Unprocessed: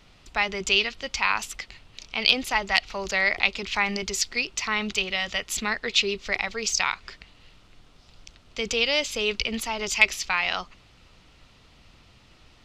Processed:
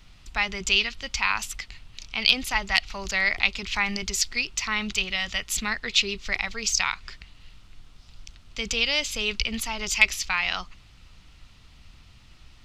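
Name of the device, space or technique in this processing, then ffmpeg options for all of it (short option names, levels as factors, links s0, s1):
smiley-face EQ: -af "lowshelf=f=86:g=8.5,equalizer=f=480:t=o:w=1.5:g=-7.5,highshelf=f=8300:g=4.5"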